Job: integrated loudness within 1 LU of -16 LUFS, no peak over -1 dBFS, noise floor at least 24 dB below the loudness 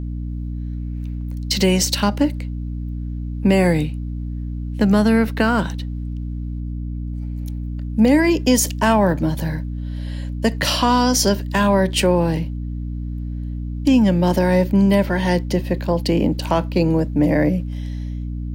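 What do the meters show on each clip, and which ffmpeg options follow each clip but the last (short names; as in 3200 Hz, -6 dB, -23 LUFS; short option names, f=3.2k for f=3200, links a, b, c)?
hum 60 Hz; harmonics up to 300 Hz; hum level -24 dBFS; loudness -20.0 LUFS; peak -4.5 dBFS; loudness target -16.0 LUFS
-> -af "bandreject=f=60:t=h:w=6,bandreject=f=120:t=h:w=6,bandreject=f=180:t=h:w=6,bandreject=f=240:t=h:w=6,bandreject=f=300:t=h:w=6"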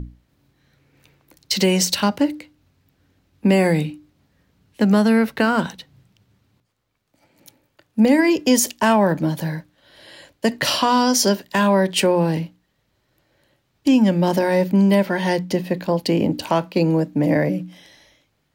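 hum none; loudness -19.0 LUFS; peak -5.0 dBFS; loudness target -16.0 LUFS
-> -af "volume=3dB"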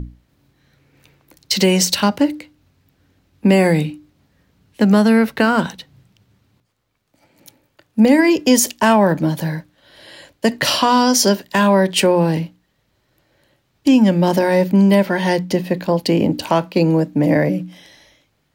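loudness -16.0 LUFS; peak -2.0 dBFS; noise floor -66 dBFS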